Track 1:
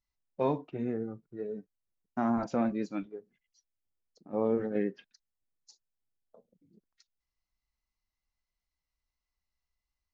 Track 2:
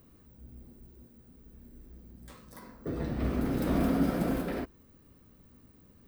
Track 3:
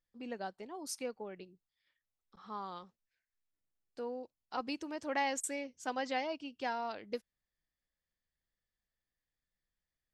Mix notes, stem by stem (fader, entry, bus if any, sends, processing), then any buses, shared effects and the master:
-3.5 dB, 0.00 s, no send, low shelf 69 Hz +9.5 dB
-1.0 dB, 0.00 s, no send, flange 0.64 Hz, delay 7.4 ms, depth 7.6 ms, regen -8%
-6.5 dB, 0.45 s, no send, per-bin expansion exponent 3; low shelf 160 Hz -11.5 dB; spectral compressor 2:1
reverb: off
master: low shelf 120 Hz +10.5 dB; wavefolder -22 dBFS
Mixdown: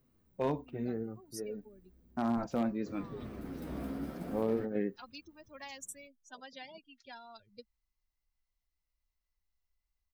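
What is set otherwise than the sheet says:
stem 2 -1.0 dB -> -9.5 dB; stem 3: missing low shelf 160 Hz -11.5 dB; master: missing low shelf 120 Hz +10.5 dB

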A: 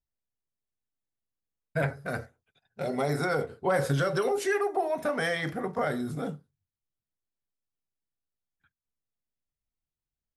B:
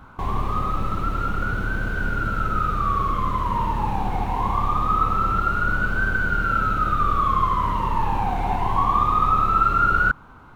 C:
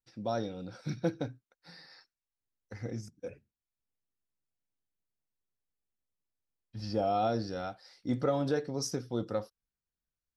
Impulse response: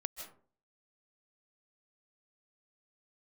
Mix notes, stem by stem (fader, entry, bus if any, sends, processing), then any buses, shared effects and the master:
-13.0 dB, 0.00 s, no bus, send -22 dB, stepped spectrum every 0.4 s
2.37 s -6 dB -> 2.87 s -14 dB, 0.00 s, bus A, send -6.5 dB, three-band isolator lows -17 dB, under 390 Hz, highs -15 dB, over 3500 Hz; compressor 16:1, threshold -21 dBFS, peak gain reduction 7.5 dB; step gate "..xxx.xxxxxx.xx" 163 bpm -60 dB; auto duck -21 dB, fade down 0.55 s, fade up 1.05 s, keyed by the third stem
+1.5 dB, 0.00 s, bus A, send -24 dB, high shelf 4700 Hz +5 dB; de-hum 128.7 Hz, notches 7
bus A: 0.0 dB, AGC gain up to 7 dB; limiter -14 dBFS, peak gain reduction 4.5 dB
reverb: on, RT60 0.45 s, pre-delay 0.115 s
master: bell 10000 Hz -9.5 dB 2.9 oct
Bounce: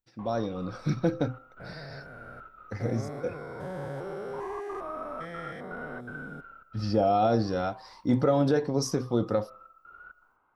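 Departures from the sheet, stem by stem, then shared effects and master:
stem A -13.0 dB -> -6.5 dB; stem B -6.0 dB -> -14.0 dB

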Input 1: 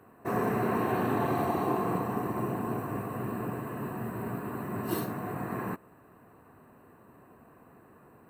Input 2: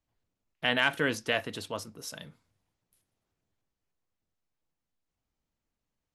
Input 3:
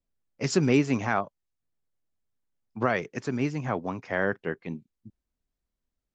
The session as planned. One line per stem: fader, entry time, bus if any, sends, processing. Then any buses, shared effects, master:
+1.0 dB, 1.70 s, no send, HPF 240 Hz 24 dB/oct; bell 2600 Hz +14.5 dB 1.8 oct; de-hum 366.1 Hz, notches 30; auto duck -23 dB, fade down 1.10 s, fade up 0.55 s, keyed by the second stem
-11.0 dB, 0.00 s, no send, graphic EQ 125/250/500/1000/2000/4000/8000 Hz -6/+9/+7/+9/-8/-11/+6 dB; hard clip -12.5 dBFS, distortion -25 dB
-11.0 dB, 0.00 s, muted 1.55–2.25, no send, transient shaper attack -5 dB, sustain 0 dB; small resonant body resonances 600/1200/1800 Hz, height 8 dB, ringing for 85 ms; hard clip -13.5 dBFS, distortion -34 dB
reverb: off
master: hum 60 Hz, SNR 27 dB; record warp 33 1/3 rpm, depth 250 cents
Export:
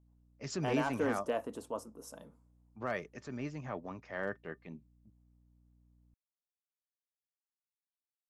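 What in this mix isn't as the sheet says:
stem 1: muted; master: missing record warp 33 1/3 rpm, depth 250 cents

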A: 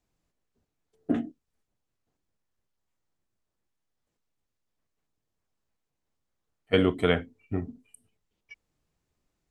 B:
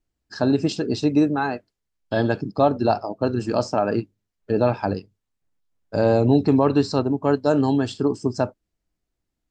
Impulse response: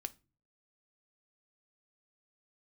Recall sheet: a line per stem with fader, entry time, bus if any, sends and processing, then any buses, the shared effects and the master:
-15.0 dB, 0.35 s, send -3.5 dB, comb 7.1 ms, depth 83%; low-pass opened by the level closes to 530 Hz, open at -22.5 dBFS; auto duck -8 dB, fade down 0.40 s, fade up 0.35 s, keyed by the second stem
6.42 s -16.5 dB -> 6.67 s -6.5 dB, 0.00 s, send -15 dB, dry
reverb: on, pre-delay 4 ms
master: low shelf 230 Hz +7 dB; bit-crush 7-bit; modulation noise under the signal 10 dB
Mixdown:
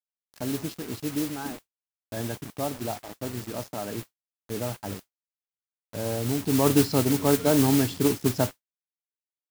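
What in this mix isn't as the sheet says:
stem A -15.0 dB -> -23.5 dB; reverb return +6.5 dB

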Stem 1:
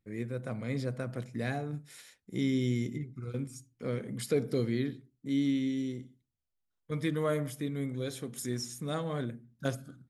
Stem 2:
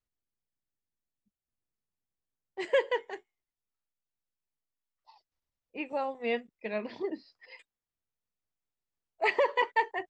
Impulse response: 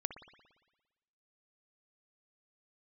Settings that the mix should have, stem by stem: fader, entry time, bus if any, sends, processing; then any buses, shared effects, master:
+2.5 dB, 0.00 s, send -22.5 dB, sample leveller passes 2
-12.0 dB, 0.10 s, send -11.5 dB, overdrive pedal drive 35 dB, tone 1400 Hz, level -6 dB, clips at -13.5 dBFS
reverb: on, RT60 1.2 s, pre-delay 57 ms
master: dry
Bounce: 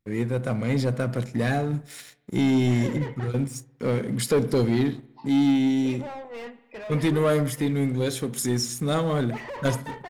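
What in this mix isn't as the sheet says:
stem 2 -12.0 dB -> -18.5 dB; reverb return +7.0 dB

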